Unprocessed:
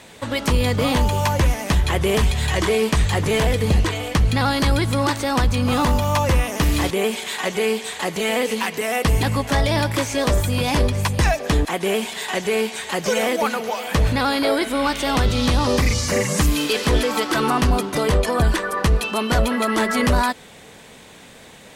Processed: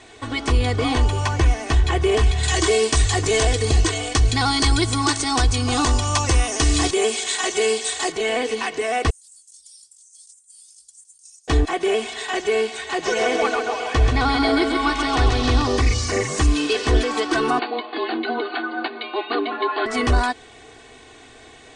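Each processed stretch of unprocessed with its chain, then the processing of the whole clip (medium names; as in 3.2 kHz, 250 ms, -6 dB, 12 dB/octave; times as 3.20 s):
2.43–8.12 s: steep low-pass 10 kHz + tone controls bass -1 dB, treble +13 dB
9.10–11.48 s: inverse Chebyshev high-pass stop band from 1.9 kHz, stop band 70 dB + compressor with a negative ratio -41 dBFS, ratio -0.5 + modulation noise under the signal 33 dB
12.77–15.62 s: low-pass 8.4 kHz + bit-crushed delay 133 ms, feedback 55%, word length 7-bit, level -4.5 dB
17.59–19.86 s: brick-wall FIR band-pass 480–5000 Hz + frequency shift -260 Hz
whole clip: Chebyshev low-pass 9.1 kHz, order 5; treble shelf 7.1 kHz -4.5 dB; comb 2.7 ms, depth 96%; trim -3 dB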